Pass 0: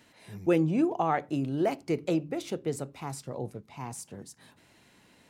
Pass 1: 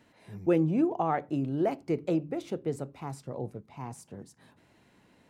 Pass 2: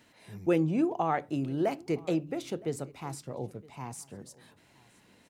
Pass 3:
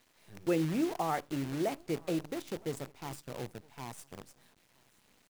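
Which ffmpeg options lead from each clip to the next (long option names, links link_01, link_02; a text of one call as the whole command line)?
ffmpeg -i in.wav -af "highshelf=frequency=2100:gain=-9.5" out.wav
ffmpeg -i in.wav -af "highshelf=frequency=2000:gain=8.5,aecho=1:1:965:0.0631,volume=-1.5dB" out.wav
ffmpeg -i in.wav -af "acrusher=bits=7:dc=4:mix=0:aa=0.000001,volume=-4dB" out.wav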